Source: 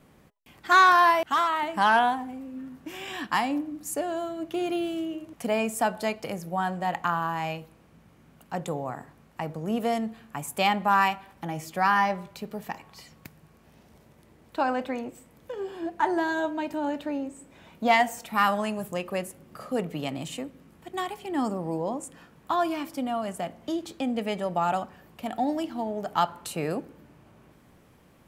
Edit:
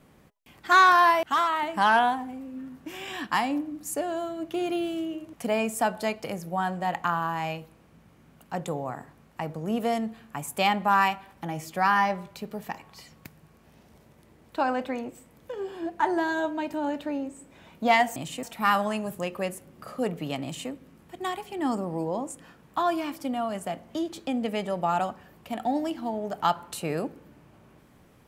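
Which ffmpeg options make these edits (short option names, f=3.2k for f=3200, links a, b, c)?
-filter_complex "[0:a]asplit=3[a][b][c];[a]atrim=end=18.162[d];[b]atrim=start=20.158:end=20.432[e];[c]atrim=start=18.158[f];[d][e]acrossfade=d=0.004:c1=hsin:c2=hsin[g];[g][f]acrossfade=d=0.004:c1=hsin:c2=hsin"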